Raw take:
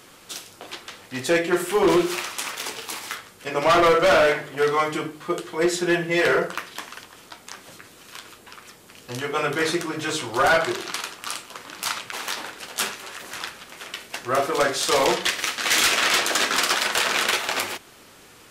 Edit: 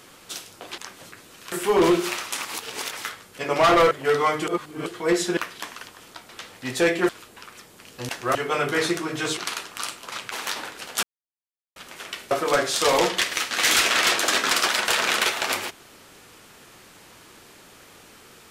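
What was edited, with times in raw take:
0.78–1.58 swap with 7.45–8.19
2.51–3.03 reverse
3.97–4.44 cut
5–5.39 reverse
5.9–6.53 cut
10.21–10.84 cut
11.59–11.93 cut
12.84–13.57 mute
14.12–14.38 move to 9.19

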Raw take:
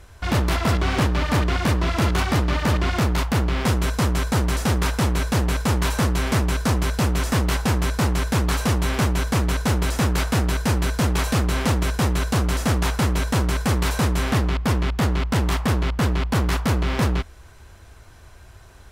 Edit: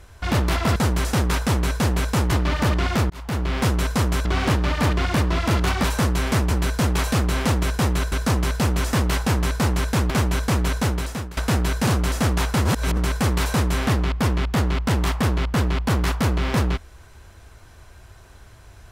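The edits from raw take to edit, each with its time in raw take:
0.76–2.35 swap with 4.28–5.84
3.13–3.72 fade in equal-power
8.49–8.94 cut
9.62–10.21 fade out, to -20.5 dB
10.71–12.32 move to 6.51
13.1–13.42 reverse

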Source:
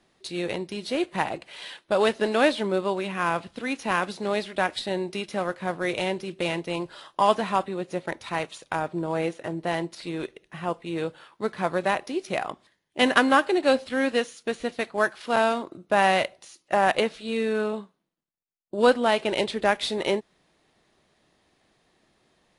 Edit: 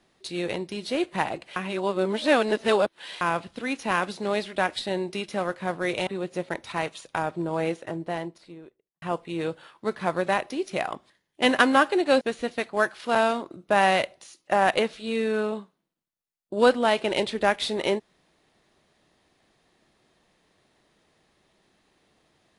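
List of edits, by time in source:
1.56–3.21 reverse
6.07–7.64 cut
9.23–10.59 studio fade out
13.78–14.42 cut

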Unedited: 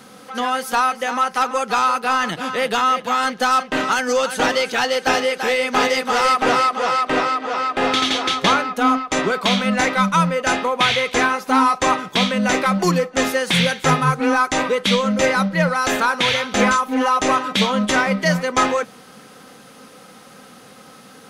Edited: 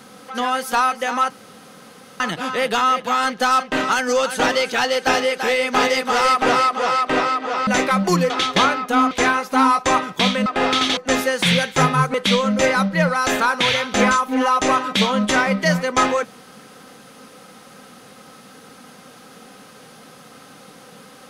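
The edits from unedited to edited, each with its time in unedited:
1.3–2.2 room tone
7.67–8.18 swap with 12.42–13.05
8.99–11.07 cut
14.22–14.74 cut

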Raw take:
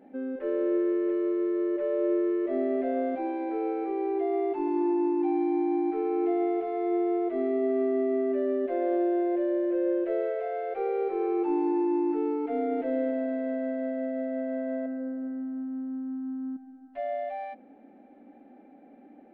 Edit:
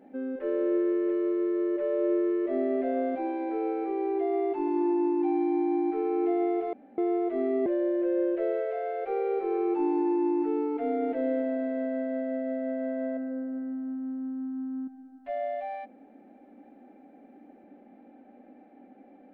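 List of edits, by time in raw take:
6.73–6.98 room tone
7.66–9.35 cut

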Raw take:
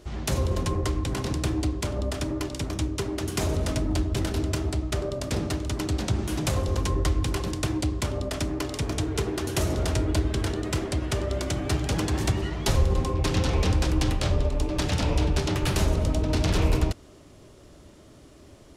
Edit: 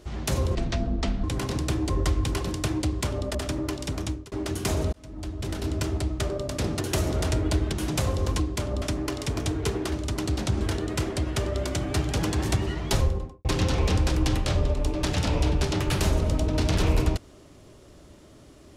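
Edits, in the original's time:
0.55–0.99 speed 64%
1.65–2.07 swap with 6.89–8.34
2.75–3.04 fade out
3.65–4.58 fade in
5.53–6.22 swap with 9.44–10.36
12.66–13.2 studio fade out

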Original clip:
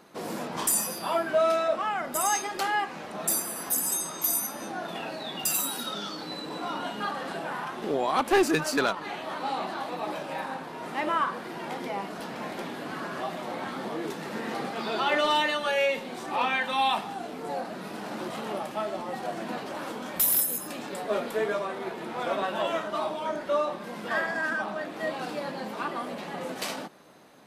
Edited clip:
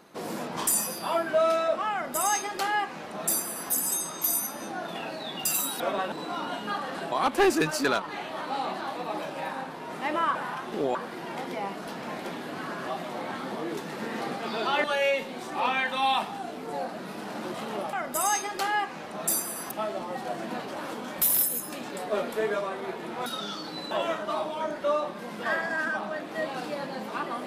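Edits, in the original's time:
1.93–3.71 copy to 18.69
5.8–6.45 swap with 22.24–22.56
7.45–8.05 move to 11.28
15.17–15.6 cut

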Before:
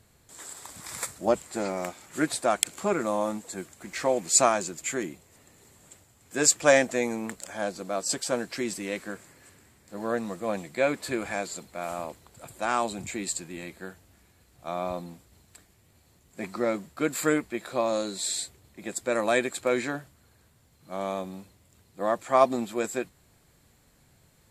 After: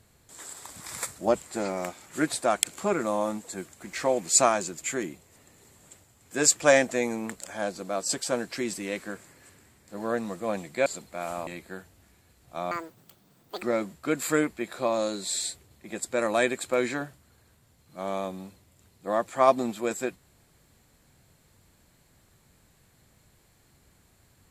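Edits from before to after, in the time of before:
10.86–11.47 cut
12.08–13.58 cut
14.82–16.56 speed 190%

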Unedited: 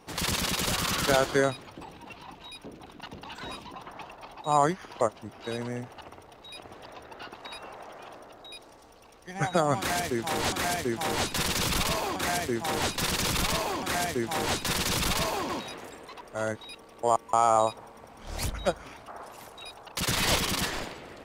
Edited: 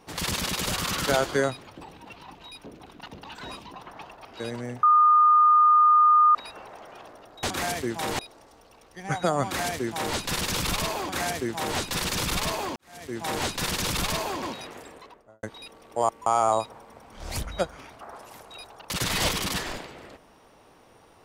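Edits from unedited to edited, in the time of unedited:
4.25–5.32 cut
5.9–7.42 bleep 1220 Hz -14 dBFS
10.45–11.21 move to 8.5
13.83–14.31 fade in quadratic
15.96–16.5 studio fade out

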